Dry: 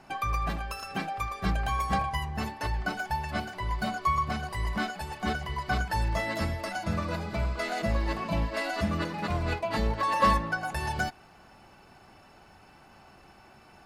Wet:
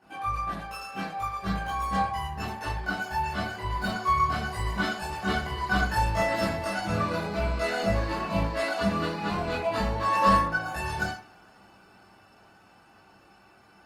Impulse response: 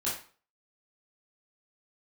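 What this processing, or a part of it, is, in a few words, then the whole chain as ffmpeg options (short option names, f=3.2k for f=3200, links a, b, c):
far-field microphone of a smart speaker: -filter_complex "[1:a]atrim=start_sample=2205[a];[0:a][a]afir=irnorm=-1:irlink=0,highpass=f=98:p=1,dynaudnorm=f=350:g=17:m=7dB,volume=-7.5dB" -ar 48000 -c:a libopus -b:a 32k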